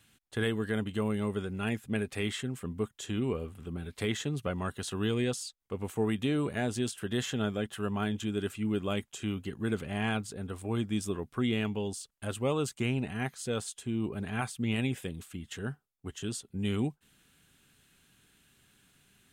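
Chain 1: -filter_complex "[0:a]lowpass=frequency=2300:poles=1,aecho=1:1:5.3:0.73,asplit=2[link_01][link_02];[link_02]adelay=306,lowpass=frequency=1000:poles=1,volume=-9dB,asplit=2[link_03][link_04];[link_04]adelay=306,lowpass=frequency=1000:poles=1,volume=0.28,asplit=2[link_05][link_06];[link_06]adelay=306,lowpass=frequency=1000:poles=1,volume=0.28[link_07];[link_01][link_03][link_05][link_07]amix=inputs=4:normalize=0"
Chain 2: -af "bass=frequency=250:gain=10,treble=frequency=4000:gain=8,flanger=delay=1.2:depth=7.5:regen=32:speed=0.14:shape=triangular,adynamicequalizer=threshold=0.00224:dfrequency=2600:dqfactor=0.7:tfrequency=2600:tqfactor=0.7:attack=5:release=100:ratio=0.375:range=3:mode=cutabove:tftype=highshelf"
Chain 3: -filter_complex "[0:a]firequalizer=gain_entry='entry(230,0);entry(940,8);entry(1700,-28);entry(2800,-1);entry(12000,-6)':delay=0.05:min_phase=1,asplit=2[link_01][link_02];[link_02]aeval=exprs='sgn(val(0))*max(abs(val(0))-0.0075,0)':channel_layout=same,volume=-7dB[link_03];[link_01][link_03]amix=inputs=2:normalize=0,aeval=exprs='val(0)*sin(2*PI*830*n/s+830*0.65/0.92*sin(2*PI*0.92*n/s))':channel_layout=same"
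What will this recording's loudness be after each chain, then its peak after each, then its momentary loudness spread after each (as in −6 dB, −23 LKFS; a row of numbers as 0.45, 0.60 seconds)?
−32.0, −32.5, −32.5 LKFS; −16.0, −16.0, −13.5 dBFS; 9, 9, 10 LU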